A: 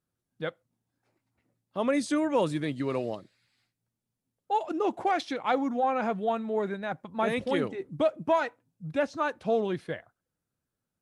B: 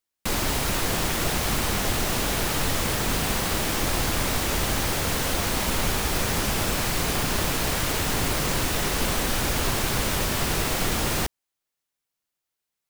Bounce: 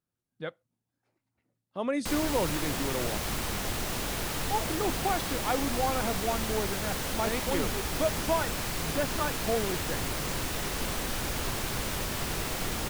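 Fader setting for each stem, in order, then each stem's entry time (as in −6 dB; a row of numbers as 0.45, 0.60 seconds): −3.5, −7.5 decibels; 0.00, 1.80 seconds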